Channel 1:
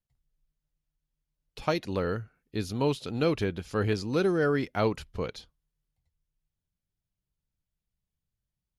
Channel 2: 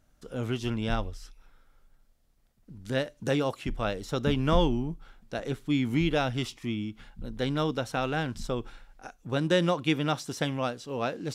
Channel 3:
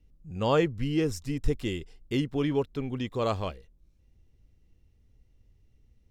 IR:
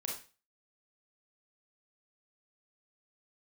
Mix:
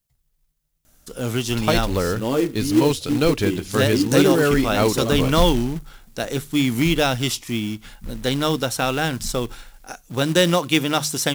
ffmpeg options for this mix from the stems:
-filter_complex "[0:a]volume=1.5dB[link_01];[1:a]highshelf=frequency=4600:gain=6.5,bandreject=frequency=50:width_type=h:width=6,bandreject=frequency=100:width_type=h:width=6,bandreject=frequency=150:width_type=h:width=6,adelay=850,volume=1.5dB[link_02];[2:a]equalizer=frequency=300:width_type=o:width=0.75:gain=14,flanger=delay=8.1:depth=5.1:regen=-25:speed=1.9:shape=sinusoidal,adelay=1800,volume=-6dB,asplit=2[link_03][link_04];[link_04]volume=-13.5dB[link_05];[3:a]atrim=start_sample=2205[link_06];[link_05][link_06]afir=irnorm=-1:irlink=0[link_07];[link_01][link_02][link_03][link_07]amix=inputs=4:normalize=0,highshelf=frequency=6000:gain=10.5,acontrast=38,acrusher=bits=4:mode=log:mix=0:aa=0.000001"

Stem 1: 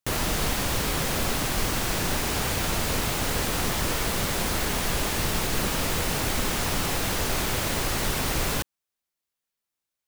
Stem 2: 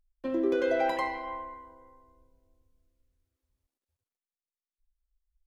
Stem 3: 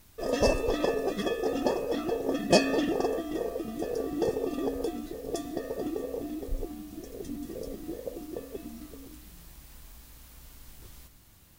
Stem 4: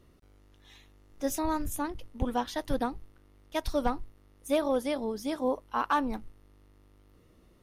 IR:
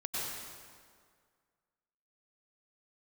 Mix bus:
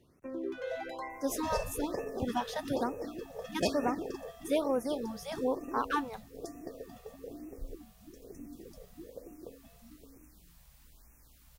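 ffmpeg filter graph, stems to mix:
-filter_complex "[1:a]acrossover=split=260[link_01][link_02];[link_01]acompressor=threshold=-33dB:ratio=3[link_03];[link_03][link_02]amix=inputs=2:normalize=0,volume=-9.5dB[link_04];[2:a]adelay=1100,volume=-9.5dB[link_05];[3:a]highpass=frequency=85:width=0.5412,highpass=frequency=85:width=1.3066,volume=-2.5dB[link_06];[link_04][link_05][link_06]amix=inputs=3:normalize=0,afftfilt=real='re*(1-between(b*sr/1024,280*pow(4000/280,0.5+0.5*sin(2*PI*1.1*pts/sr))/1.41,280*pow(4000/280,0.5+0.5*sin(2*PI*1.1*pts/sr))*1.41))':imag='im*(1-between(b*sr/1024,280*pow(4000/280,0.5+0.5*sin(2*PI*1.1*pts/sr))/1.41,280*pow(4000/280,0.5+0.5*sin(2*PI*1.1*pts/sr))*1.41))':win_size=1024:overlap=0.75"

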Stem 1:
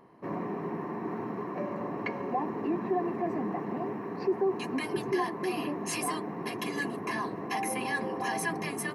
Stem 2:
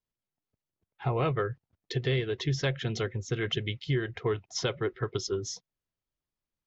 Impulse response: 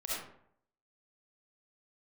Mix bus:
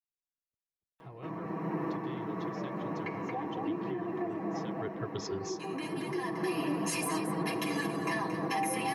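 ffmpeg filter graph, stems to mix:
-filter_complex "[0:a]aecho=1:1:6.2:0.91,alimiter=level_in=1dB:limit=-24dB:level=0:latency=1:release=268,volume=-1dB,adelay=1000,volume=1dB,asplit=3[link_01][link_02][link_03];[link_02]volume=-15.5dB[link_04];[link_03]volume=-9dB[link_05];[1:a]volume=-7dB,afade=type=in:start_time=4.68:duration=0.21:silence=0.223872,asplit=2[link_06][link_07];[link_07]apad=whole_len=438992[link_08];[link_01][link_08]sidechaincompress=threshold=-51dB:ratio=4:attack=16:release=881[link_09];[2:a]atrim=start_sample=2205[link_10];[link_04][link_10]afir=irnorm=-1:irlink=0[link_11];[link_05]aecho=0:1:227:1[link_12];[link_09][link_06][link_11][link_12]amix=inputs=4:normalize=0"

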